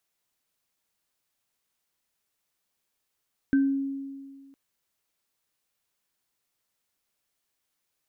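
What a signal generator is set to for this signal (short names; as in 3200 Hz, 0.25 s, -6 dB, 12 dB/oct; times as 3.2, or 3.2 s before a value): sine partials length 1.01 s, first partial 274 Hz, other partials 1550 Hz, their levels -13 dB, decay 1.80 s, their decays 0.30 s, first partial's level -17 dB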